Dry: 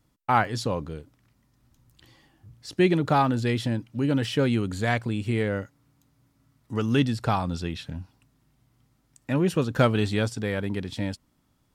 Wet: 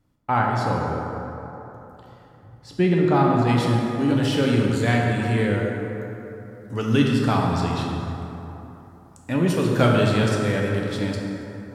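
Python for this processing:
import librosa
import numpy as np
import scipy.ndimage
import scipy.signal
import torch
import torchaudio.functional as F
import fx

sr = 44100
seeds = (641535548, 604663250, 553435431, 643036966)

y = fx.high_shelf(x, sr, hz=2500.0, db=fx.steps((0.0, -8.5), (3.47, 2.5)))
y = fx.rev_plate(y, sr, seeds[0], rt60_s=3.4, hf_ratio=0.45, predelay_ms=0, drr_db=-1.5)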